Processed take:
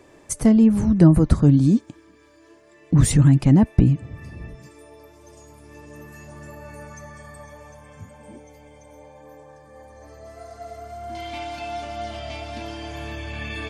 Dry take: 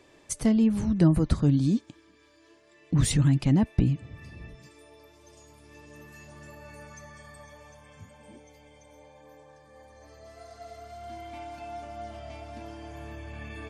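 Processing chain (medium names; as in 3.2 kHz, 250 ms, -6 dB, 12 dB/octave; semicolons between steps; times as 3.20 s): peaking EQ 3.6 kHz -8 dB 1.5 oct, from 11.15 s +8.5 dB; trim +7.5 dB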